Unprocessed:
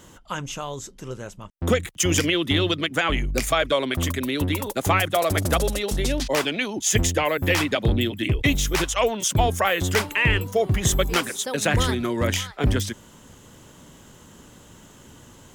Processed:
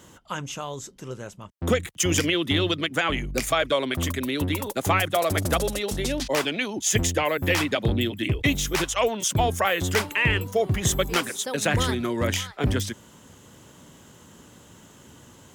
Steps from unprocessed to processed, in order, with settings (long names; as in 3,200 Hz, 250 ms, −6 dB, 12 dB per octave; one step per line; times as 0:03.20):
high-pass filter 64 Hz
level −1.5 dB